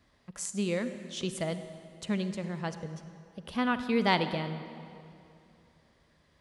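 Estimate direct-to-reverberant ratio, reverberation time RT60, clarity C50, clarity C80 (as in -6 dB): 10.0 dB, 2.6 s, 10.5 dB, 11.0 dB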